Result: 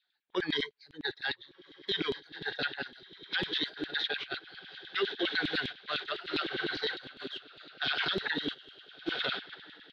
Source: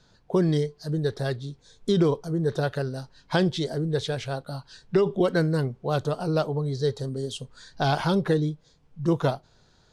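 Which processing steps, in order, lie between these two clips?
spectral noise reduction 9 dB; HPF 54 Hz 24 dB/oct; bell 650 Hz -2 dB 0.81 oct; notch 470 Hz, Q 15; diffused feedback echo 1.38 s, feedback 51%, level -8 dB; gate -29 dBFS, range -14 dB; EQ curve 100 Hz 0 dB, 170 Hz -6 dB, 310 Hz -5 dB, 450 Hz -7 dB, 840 Hz -17 dB, 1600 Hz +8 dB, 3800 Hz +11 dB, 7800 Hz -24 dB, 12000 Hz -20 dB; harmoniser -12 st -12 dB; LFO high-pass saw down 9.9 Hz 230–3400 Hz; limiter -19.5 dBFS, peak gain reduction 14.5 dB; gain -1.5 dB

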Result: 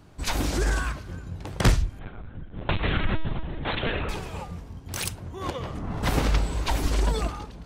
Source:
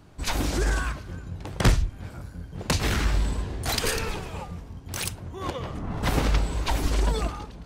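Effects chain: 1.99–4.09 LPC vocoder at 8 kHz pitch kept

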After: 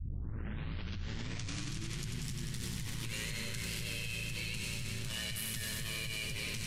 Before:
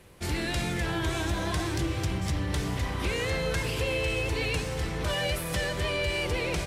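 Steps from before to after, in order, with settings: tape start at the beginning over 2.20 s; passive tone stack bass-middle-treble 6-0-2; ring modulator 56 Hz; high shelf 4100 Hz +6.5 dB; thinning echo 94 ms, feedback 84%, high-pass 550 Hz, level -5 dB; fast leveller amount 100%

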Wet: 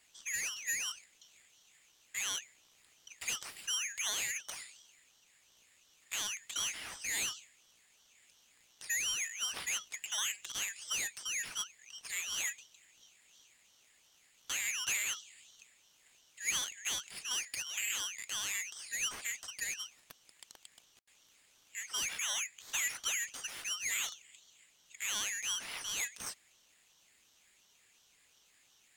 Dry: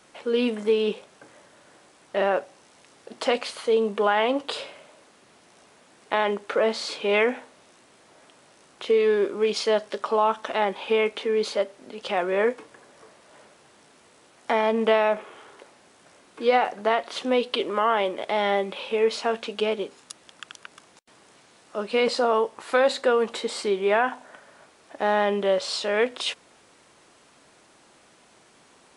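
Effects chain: band-swap scrambler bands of 4000 Hz; one-sided clip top -31 dBFS; ring modulator with a swept carrier 1900 Hz, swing 35%, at 2.8 Hz; gain -8.5 dB

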